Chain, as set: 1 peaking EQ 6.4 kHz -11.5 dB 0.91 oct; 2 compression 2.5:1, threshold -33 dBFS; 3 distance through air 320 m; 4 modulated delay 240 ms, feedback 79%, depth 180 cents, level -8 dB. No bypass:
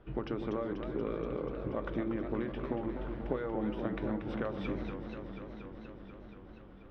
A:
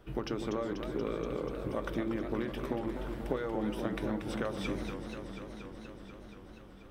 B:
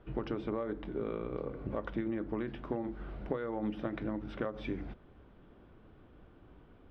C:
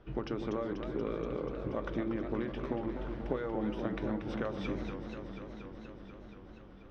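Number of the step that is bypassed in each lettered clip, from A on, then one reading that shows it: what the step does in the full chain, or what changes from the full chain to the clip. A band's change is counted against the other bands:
3, 4 kHz band +6.5 dB; 4, momentary loudness spread change -10 LU; 1, 4 kHz band +2.5 dB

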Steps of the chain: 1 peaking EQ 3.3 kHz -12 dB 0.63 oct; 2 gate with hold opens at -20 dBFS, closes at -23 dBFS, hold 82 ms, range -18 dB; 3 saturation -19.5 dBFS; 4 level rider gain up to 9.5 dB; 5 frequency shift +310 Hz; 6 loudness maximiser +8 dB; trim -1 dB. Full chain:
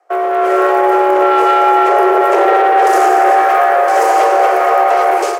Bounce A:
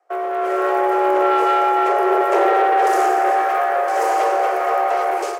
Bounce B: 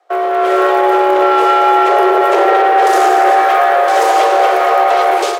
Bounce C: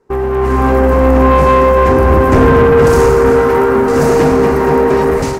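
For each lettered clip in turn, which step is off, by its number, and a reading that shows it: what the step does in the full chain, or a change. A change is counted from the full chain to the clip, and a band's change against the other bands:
6, crest factor change +4.5 dB; 1, 4 kHz band +5.0 dB; 5, 250 Hz band +9.0 dB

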